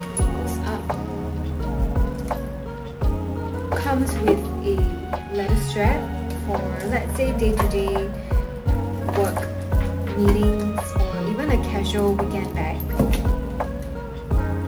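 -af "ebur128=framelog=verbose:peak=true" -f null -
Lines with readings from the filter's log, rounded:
Integrated loudness:
  I:         -23.8 LUFS
  Threshold: -33.8 LUFS
Loudness range:
  LRA:         3.4 LU
  Threshold: -43.5 LUFS
  LRA low:   -25.8 LUFS
  LRA high:  -22.4 LUFS
True peak:
  Peak:       -4.6 dBFS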